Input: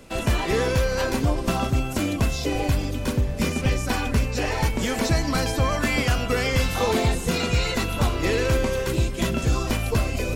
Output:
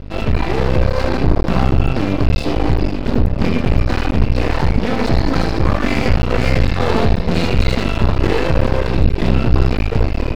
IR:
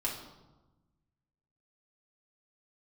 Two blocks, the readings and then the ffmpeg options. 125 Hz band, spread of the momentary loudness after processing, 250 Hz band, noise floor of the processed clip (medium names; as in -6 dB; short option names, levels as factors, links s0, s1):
+8.0 dB, 2 LU, +7.5 dB, -21 dBFS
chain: -filter_complex "[0:a]lowshelf=f=470:g=9,bandreject=f=3200:w=8.1,dynaudnorm=f=650:g=3:m=3.76,aresample=11025,aresample=44100,aresample=16000,asoftclip=type=tanh:threshold=0.266,aresample=44100,aeval=exprs='val(0)+0.0282*(sin(2*PI*50*n/s)+sin(2*PI*2*50*n/s)/2+sin(2*PI*3*50*n/s)/3+sin(2*PI*4*50*n/s)/4+sin(2*PI*5*50*n/s)/5)':c=same,asplit=2[s0][s1];[s1]aecho=0:1:33|78:0.398|0.562[s2];[s0][s2]amix=inputs=2:normalize=0,aeval=exprs='max(val(0),0)':c=same,volume=1.58"